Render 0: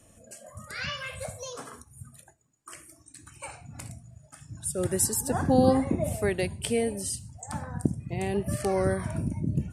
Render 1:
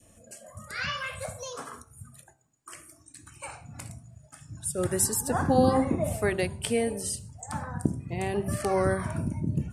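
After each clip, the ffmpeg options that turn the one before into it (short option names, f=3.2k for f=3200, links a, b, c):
-af "bandreject=f=64.95:t=h:w=4,bandreject=f=129.9:t=h:w=4,bandreject=f=194.85:t=h:w=4,bandreject=f=259.8:t=h:w=4,bandreject=f=324.75:t=h:w=4,bandreject=f=389.7:t=h:w=4,bandreject=f=454.65:t=h:w=4,bandreject=f=519.6:t=h:w=4,bandreject=f=584.55:t=h:w=4,bandreject=f=649.5:t=h:w=4,bandreject=f=714.45:t=h:w=4,bandreject=f=779.4:t=h:w=4,bandreject=f=844.35:t=h:w=4,bandreject=f=909.3:t=h:w=4,bandreject=f=974.25:t=h:w=4,bandreject=f=1.0392k:t=h:w=4,bandreject=f=1.10415k:t=h:w=4,bandreject=f=1.1691k:t=h:w=4,bandreject=f=1.23405k:t=h:w=4,bandreject=f=1.299k:t=h:w=4,bandreject=f=1.36395k:t=h:w=4,bandreject=f=1.4289k:t=h:w=4,bandreject=f=1.49385k:t=h:w=4,bandreject=f=1.5588k:t=h:w=4,adynamicequalizer=threshold=0.00447:dfrequency=1200:dqfactor=1.4:tfrequency=1200:tqfactor=1.4:attack=5:release=100:ratio=0.375:range=3:mode=boostabove:tftype=bell"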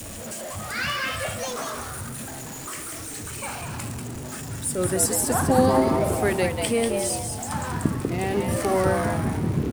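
-filter_complex "[0:a]aeval=exprs='val(0)+0.5*0.0211*sgn(val(0))':c=same,asplit=5[a][b][c][d][e];[b]adelay=191,afreqshift=130,volume=-5.5dB[f];[c]adelay=382,afreqshift=260,volume=-14.1dB[g];[d]adelay=573,afreqshift=390,volume=-22.8dB[h];[e]adelay=764,afreqshift=520,volume=-31.4dB[i];[a][f][g][h][i]amix=inputs=5:normalize=0,volume=2dB"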